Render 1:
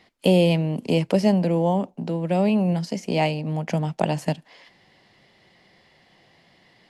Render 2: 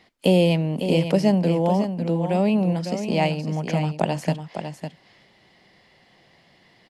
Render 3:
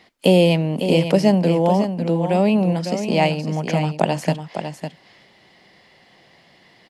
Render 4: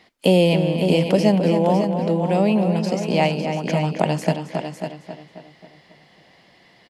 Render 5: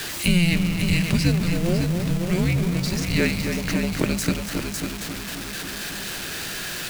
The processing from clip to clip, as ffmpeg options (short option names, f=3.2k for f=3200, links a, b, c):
-af "aecho=1:1:554:0.376"
-af "lowshelf=f=130:g=-6,volume=4.5dB"
-filter_complex "[0:a]asplit=2[a][b];[b]adelay=269,lowpass=f=4k:p=1,volume=-8dB,asplit=2[c][d];[d]adelay=269,lowpass=f=4k:p=1,volume=0.54,asplit=2[e][f];[f]adelay=269,lowpass=f=4k:p=1,volume=0.54,asplit=2[g][h];[h]adelay=269,lowpass=f=4k:p=1,volume=0.54,asplit=2[i][j];[j]adelay=269,lowpass=f=4k:p=1,volume=0.54,asplit=2[k][l];[l]adelay=269,lowpass=f=4k:p=1,volume=0.54[m];[a][c][e][g][i][k][m]amix=inputs=7:normalize=0,volume=-1.5dB"
-af "aeval=exprs='val(0)+0.5*0.0531*sgn(val(0))':c=same,highshelf=f=2.1k:g=9,afreqshift=-350,volume=-5dB"